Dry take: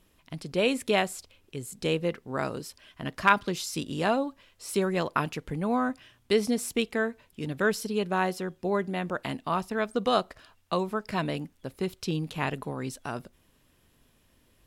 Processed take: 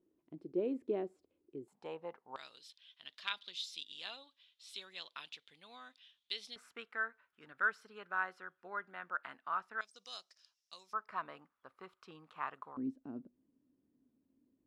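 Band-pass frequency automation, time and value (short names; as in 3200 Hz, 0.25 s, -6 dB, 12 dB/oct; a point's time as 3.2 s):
band-pass, Q 5.2
340 Hz
from 1.68 s 870 Hz
from 2.36 s 3600 Hz
from 6.56 s 1400 Hz
from 9.81 s 5500 Hz
from 10.93 s 1200 Hz
from 12.77 s 270 Hz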